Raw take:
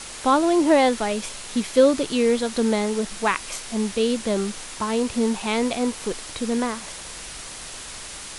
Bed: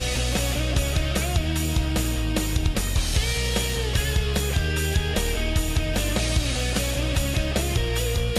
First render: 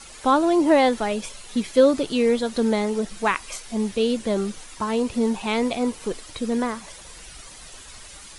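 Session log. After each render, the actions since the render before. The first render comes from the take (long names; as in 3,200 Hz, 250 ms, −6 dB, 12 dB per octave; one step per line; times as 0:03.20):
broadband denoise 10 dB, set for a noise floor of −37 dBFS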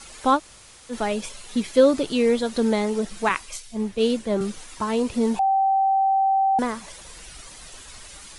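0:00.37–0:00.92: fill with room tone, crossfade 0.06 s
0:03.29–0:04.41: multiband upward and downward expander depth 100%
0:05.39–0:06.59: beep over 776 Hz −16.5 dBFS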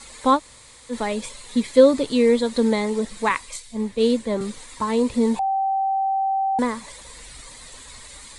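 EQ curve with evenly spaced ripples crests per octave 1, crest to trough 7 dB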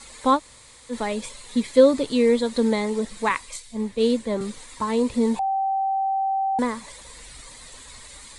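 level −1.5 dB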